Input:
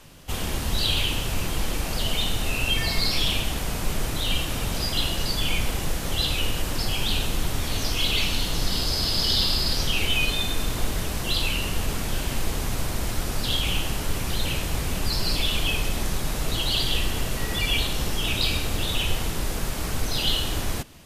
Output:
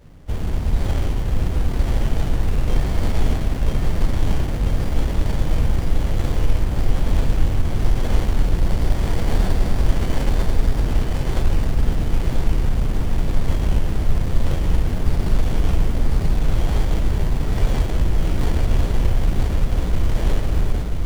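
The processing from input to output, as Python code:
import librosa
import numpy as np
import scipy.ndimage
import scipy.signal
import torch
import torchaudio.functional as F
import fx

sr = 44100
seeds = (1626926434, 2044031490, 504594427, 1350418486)

y = fx.low_shelf(x, sr, hz=150.0, db=9.5)
y = fx.echo_feedback(y, sr, ms=986, feedback_pct=52, wet_db=-3.5)
y = fx.running_max(y, sr, window=33)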